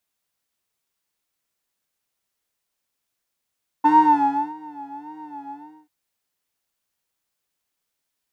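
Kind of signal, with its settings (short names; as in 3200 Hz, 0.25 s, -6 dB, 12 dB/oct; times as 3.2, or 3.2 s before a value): synth patch with vibrato D4, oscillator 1 triangle, oscillator 2 saw, interval +19 st, oscillator 2 level -17 dB, sub -25 dB, noise -29 dB, filter bandpass, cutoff 700 Hz, Q 5.4, filter envelope 0.5 oct, filter decay 0.84 s, filter sustain 40%, attack 17 ms, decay 0.68 s, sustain -23 dB, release 0.37 s, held 1.67 s, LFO 1.7 Hz, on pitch 93 cents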